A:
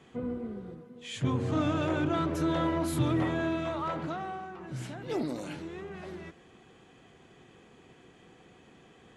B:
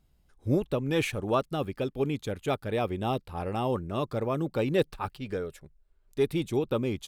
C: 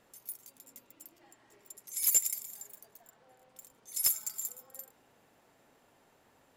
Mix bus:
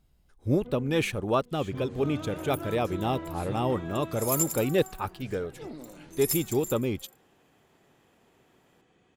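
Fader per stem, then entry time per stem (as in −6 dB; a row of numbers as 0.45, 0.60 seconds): −9.0, +1.0, −2.0 decibels; 0.50, 0.00, 2.25 seconds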